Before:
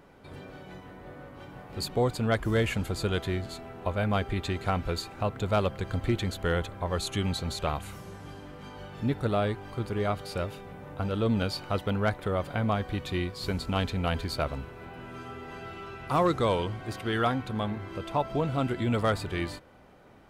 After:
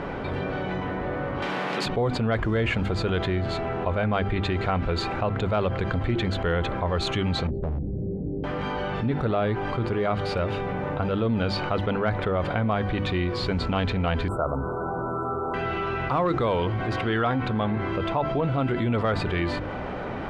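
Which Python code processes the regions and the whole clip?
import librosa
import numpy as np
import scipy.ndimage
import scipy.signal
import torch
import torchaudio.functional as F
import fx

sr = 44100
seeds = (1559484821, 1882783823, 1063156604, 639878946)

y = fx.chain(x, sr, fx.steep_highpass(hz=160.0, slope=48),
    fx.spectral_comp(ratio=2.0), at=(1.42, 1.86))
y = fx.chain(y, sr, fx.cheby2_lowpass(hz=1100.0, order=4, stop_db=50),
    fx.clip_hard(threshold_db=-34.0), at=(7.47, 8.44))
y = fx.chain(y, sr, fx.brickwall_bandstop(low_hz=1500.0, high_hz=7300.0),
    fx.low_shelf(hz=140.0, db=-8.5), at=(14.28, 15.54))
y = scipy.signal.sosfilt(scipy.signal.butter(2, 2900.0, 'lowpass', fs=sr, output='sos'), y)
y = fx.hum_notches(y, sr, base_hz=50, count=7)
y = fx.env_flatten(y, sr, amount_pct=70)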